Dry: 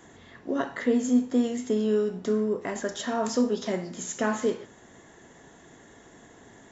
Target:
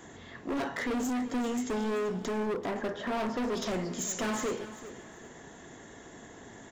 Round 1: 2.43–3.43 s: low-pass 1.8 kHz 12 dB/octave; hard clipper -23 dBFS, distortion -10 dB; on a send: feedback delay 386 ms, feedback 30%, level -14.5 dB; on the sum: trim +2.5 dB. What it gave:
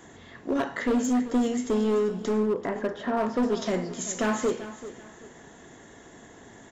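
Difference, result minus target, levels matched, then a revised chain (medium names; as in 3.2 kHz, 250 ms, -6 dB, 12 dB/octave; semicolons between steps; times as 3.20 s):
hard clipper: distortion -6 dB
2.43–3.43 s: low-pass 1.8 kHz 12 dB/octave; hard clipper -32 dBFS, distortion -4 dB; on a send: feedback delay 386 ms, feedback 30%, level -14.5 dB; on the sum: trim +2.5 dB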